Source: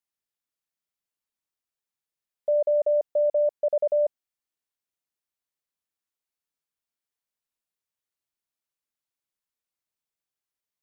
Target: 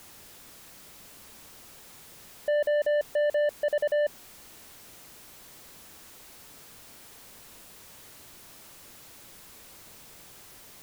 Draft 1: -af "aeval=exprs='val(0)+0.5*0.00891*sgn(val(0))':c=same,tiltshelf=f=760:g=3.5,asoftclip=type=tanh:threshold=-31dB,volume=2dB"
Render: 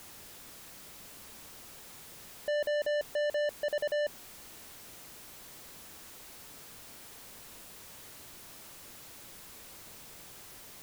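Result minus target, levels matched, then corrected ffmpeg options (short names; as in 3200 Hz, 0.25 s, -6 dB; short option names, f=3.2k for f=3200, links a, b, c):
soft clip: distortion +5 dB
-af "aeval=exprs='val(0)+0.5*0.00891*sgn(val(0))':c=same,tiltshelf=f=760:g=3.5,asoftclip=type=tanh:threshold=-24.5dB,volume=2dB"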